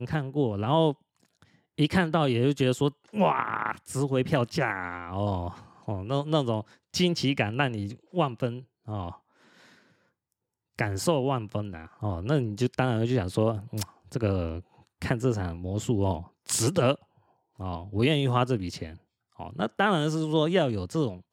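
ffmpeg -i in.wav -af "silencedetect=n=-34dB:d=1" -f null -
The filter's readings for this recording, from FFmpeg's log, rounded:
silence_start: 9.11
silence_end: 10.79 | silence_duration: 1.68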